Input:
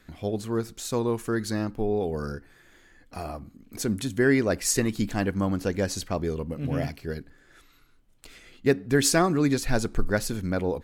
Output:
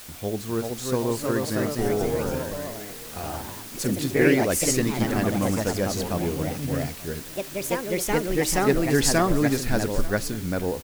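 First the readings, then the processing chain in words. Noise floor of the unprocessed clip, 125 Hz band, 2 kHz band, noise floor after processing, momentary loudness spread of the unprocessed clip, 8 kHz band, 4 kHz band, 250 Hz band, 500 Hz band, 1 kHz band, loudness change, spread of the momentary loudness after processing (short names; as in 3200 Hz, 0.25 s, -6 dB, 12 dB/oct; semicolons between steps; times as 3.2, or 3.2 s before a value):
-58 dBFS, +2.0 dB, +2.5 dB, -39 dBFS, 15 LU, +3.0 dB, +3.0 dB, +2.0 dB, +2.5 dB, +4.0 dB, +2.0 dB, 12 LU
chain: added noise white -43 dBFS; echoes that change speed 0.415 s, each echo +2 st, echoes 3; echo 0.885 s -19.5 dB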